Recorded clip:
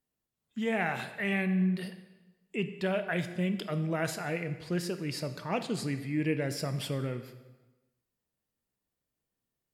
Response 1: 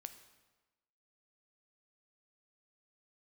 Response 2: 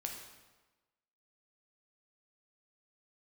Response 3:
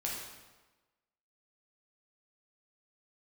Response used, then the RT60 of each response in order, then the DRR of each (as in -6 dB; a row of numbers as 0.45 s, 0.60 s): 1; 1.2 s, 1.2 s, 1.2 s; 9.0 dB, 1.5 dB, -4.0 dB